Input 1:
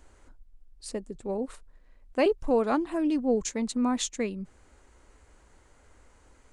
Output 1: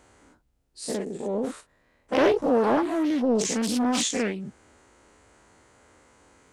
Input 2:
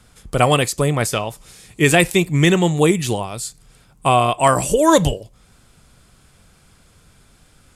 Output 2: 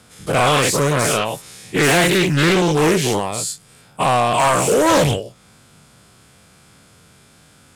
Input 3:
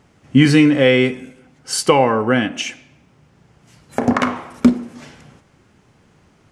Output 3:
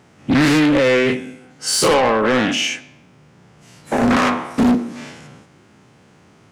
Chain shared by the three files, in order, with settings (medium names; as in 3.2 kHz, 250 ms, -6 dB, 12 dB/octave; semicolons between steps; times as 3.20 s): every event in the spectrogram widened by 120 ms; high-pass 110 Hz 12 dB/octave; saturation -10.5 dBFS; loudspeaker Doppler distortion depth 0.3 ms